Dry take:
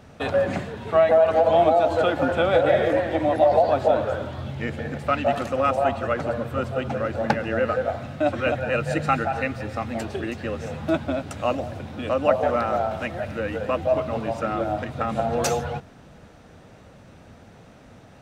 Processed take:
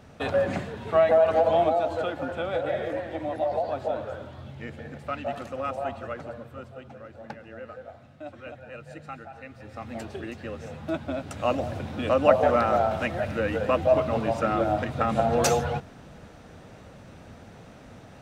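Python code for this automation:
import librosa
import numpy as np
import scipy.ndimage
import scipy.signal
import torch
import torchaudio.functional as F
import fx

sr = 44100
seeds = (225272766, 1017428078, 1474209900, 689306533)

y = fx.gain(x, sr, db=fx.line((1.38, -2.5), (2.21, -9.5), (6.02, -9.5), (6.96, -18.0), (9.41, -18.0), (9.93, -7.0), (10.94, -7.0), (11.71, 1.0)))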